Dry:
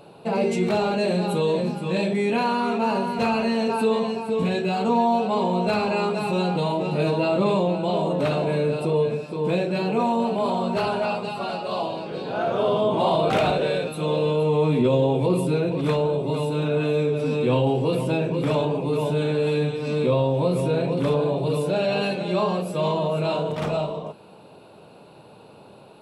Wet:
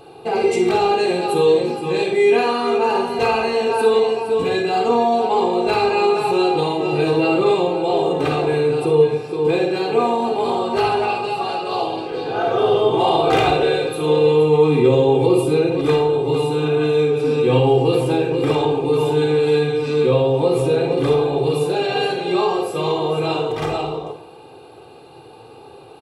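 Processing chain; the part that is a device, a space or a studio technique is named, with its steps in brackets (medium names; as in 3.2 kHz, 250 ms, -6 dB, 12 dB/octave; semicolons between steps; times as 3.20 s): microphone above a desk (comb 2.5 ms, depth 81%; reverberation RT60 0.50 s, pre-delay 40 ms, DRR 5 dB); trim +2.5 dB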